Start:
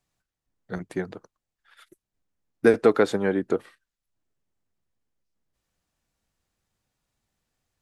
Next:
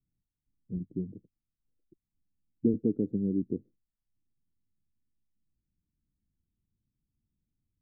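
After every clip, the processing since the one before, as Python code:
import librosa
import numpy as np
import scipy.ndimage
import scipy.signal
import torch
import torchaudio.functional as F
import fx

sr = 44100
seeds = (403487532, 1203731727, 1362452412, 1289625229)

y = scipy.signal.sosfilt(scipy.signal.cheby2(4, 60, 980.0, 'lowpass', fs=sr, output='sos'), x)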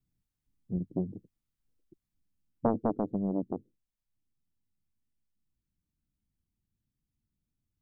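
y = fx.self_delay(x, sr, depth_ms=0.94)
y = fx.rider(y, sr, range_db=10, speed_s=2.0)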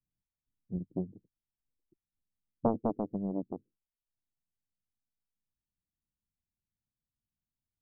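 y = scipy.signal.sosfilt(scipy.signal.butter(4, 1200.0, 'lowpass', fs=sr, output='sos'), x)
y = fx.upward_expand(y, sr, threshold_db=-45.0, expansion=1.5)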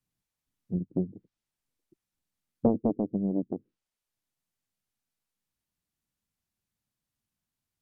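y = fx.env_lowpass_down(x, sr, base_hz=470.0, full_db=-33.0)
y = fx.low_shelf(y, sr, hz=82.0, db=-9.5)
y = F.gain(torch.from_numpy(y), 7.5).numpy()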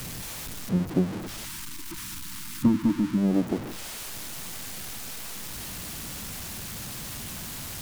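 y = x + 0.5 * 10.0 ** (-33.5 / 20.0) * np.sign(x)
y = fx.spec_box(y, sr, start_s=1.46, length_s=1.72, low_hz=360.0, high_hz=870.0, gain_db=-21)
y = F.gain(torch.from_numpy(y), 4.0).numpy()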